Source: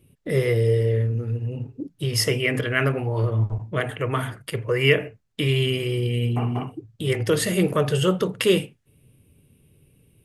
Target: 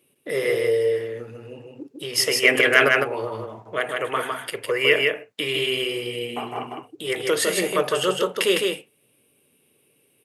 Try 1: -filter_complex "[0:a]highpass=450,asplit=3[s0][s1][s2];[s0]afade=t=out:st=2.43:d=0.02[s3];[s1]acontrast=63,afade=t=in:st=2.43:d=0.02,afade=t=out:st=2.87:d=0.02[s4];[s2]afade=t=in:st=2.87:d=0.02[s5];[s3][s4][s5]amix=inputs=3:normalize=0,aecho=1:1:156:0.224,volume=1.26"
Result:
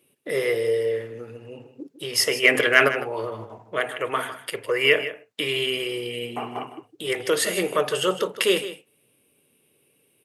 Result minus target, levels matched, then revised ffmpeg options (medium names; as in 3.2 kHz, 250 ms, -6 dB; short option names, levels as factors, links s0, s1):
echo-to-direct -9.5 dB
-filter_complex "[0:a]highpass=450,asplit=3[s0][s1][s2];[s0]afade=t=out:st=2.43:d=0.02[s3];[s1]acontrast=63,afade=t=in:st=2.43:d=0.02,afade=t=out:st=2.87:d=0.02[s4];[s2]afade=t=in:st=2.87:d=0.02[s5];[s3][s4][s5]amix=inputs=3:normalize=0,aecho=1:1:156:0.668,volume=1.26"